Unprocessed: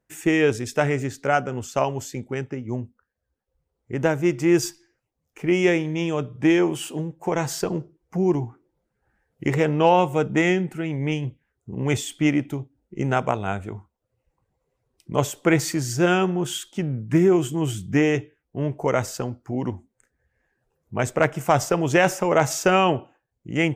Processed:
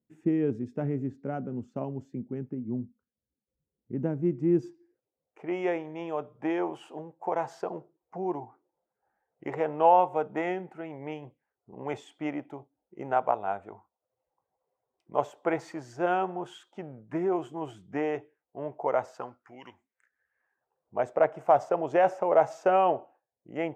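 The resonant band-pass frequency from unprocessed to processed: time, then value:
resonant band-pass, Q 2
0:04.52 220 Hz
0:05.47 770 Hz
0:19.13 770 Hz
0:19.64 2,700 Hz
0:20.98 680 Hz

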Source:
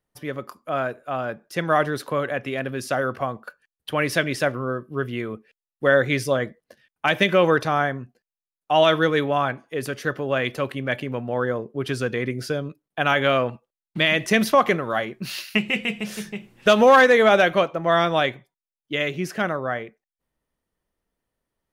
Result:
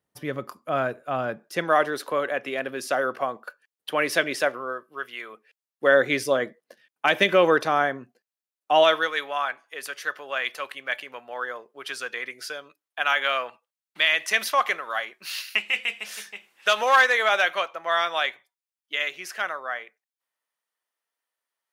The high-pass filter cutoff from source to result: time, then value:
0:01.21 87 Hz
0:01.73 350 Hz
0:04.29 350 Hz
0:05.15 1,100 Hz
0:05.99 280 Hz
0:08.71 280 Hz
0:09.11 1,000 Hz

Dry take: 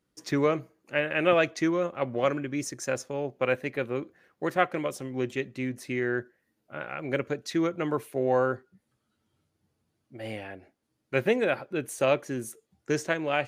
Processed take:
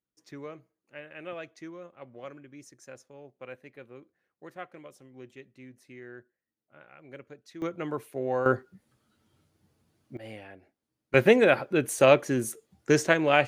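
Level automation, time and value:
−17 dB
from 0:07.62 −4.5 dB
from 0:08.46 +6 dB
from 0:10.17 −6.5 dB
from 0:11.14 +5.5 dB

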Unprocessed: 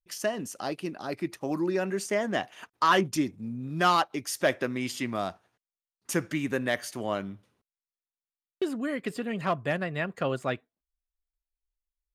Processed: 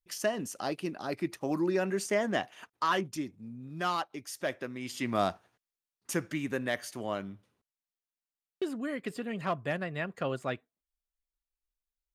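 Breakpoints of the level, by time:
0:02.30 −1 dB
0:03.13 −8.5 dB
0:04.80 −8.5 dB
0:05.22 +3.5 dB
0:06.20 −4 dB

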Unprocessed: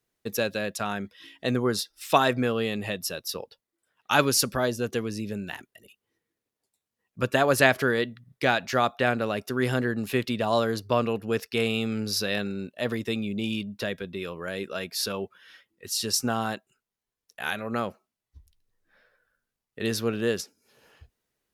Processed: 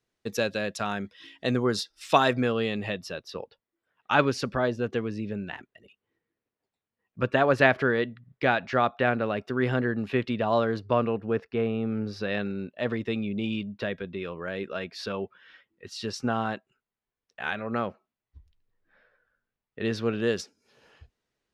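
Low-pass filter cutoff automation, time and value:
0:02.32 6,700 Hz
0:03.35 2,700 Hz
0:10.83 2,700 Hz
0:11.79 1,100 Hz
0:12.44 2,900 Hz
0:19.86 2,900 Hz
0:20.42 6,100 Hz

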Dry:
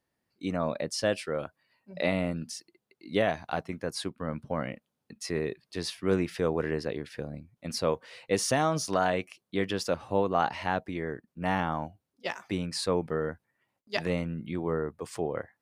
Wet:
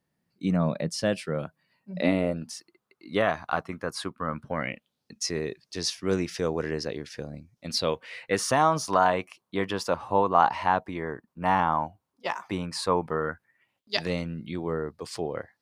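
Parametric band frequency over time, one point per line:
parametric band +11.5 dB 0.76 octaves
0:01.94 170 Hz
0:02.56 1,200 Hz
0:04.35 1,200 Hz
0:05.16 5,900 Hz
0:07.54 5,900 Hz
0:08.58 1,000 Hz
0:13.14 1,000 Hz
0:14.01 4,600 Hz

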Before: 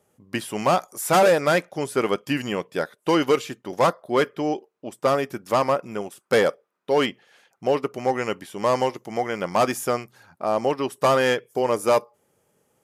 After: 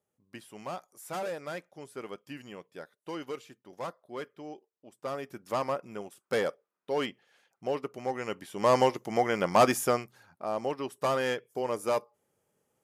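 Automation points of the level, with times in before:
0:04.87 −18.5 dB
0:05.46 −10 dB
0:08.19 −10 dB
0:08.77 −1 dB
0:09.77 −1 dB
0:10.44 −9.5 dB

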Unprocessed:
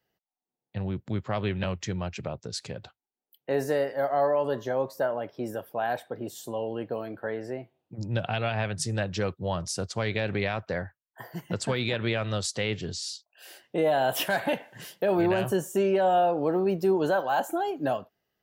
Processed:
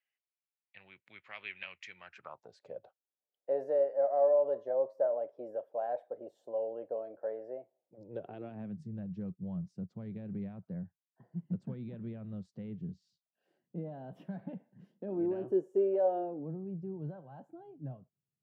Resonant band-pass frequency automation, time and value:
resonant band-pass, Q 4.5
0:01.95 2,300 Hz
0:02.60 570 Hz
0:07.96 570 Hz
0:08.85 180 Hz
0:14.70 180 Hz
0:16.05 530 Hz
0:16.57 140 Hz

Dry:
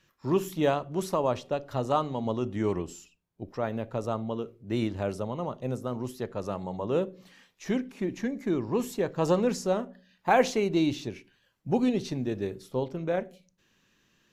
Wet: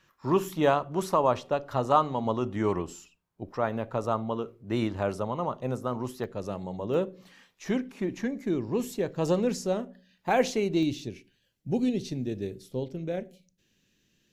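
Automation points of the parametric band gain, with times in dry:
parametric band 1,100 Hz 1.3 octaves
+6.5 dB
from 0:06.24 −4.5 dB
from 0:06.94 +2 dB
from 0:08.41 −5.5 dB
from 0:10.83 −14.5 dB

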